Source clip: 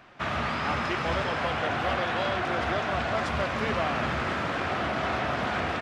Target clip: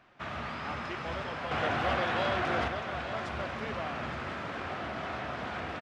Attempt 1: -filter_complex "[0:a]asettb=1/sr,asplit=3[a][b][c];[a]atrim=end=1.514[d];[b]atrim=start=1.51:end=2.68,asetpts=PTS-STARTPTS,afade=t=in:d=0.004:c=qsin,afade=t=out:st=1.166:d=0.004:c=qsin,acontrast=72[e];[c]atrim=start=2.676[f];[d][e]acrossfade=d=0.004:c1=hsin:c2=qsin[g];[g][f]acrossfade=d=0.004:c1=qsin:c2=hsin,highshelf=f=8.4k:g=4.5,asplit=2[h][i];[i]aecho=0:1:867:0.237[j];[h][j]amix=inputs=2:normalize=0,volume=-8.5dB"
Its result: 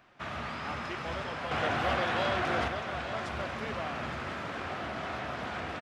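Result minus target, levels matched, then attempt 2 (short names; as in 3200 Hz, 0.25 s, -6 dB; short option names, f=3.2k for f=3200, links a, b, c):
8000 Hz band +3.0 dB
-filter_complex "[0:a]asettb=1/sr,asplit=3[a][b][c];[a]atrim=end=1.514[d];[b]atrim=start=1.51:end=2.68,asetpts=PTS-STARTPTS,afade=t=in:d=0.004:c=qsin,afade=t=out:st=1.166:d=0.004:c=qsin,acontrast=72[e];[c]atrim=start=2.676[f];[d][e]acrossfade=d=0.004:c1=hsin:c2=qsin[g];[g][f]acrossfade=d=0.004:c1=qsin:c2=hsin,highshelf=f=8.4k:g=-5,asplit=2[h][i];[i]aecho=0:1:867:0.237[j];[h][j]amix=inputs=2:normalize=0,volume=-8.5dB"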